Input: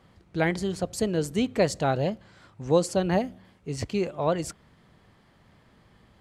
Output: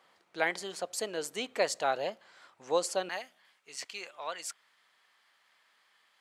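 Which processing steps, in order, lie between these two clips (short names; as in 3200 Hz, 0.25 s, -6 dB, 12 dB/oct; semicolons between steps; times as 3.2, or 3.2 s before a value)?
HPF 660 Hz 12 dB/oct, from 3.09 s 1400 Hz; gain -1 dB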